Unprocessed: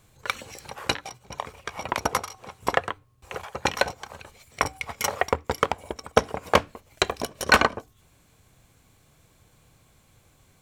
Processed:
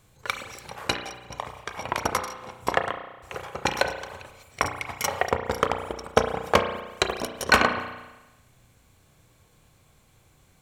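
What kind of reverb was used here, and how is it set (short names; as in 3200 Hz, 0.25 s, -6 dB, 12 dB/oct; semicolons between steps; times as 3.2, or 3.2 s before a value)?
spring tank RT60 1.1 s, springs 33 ms, chirp 25 ms, DRR 6 dB; gain -1 dB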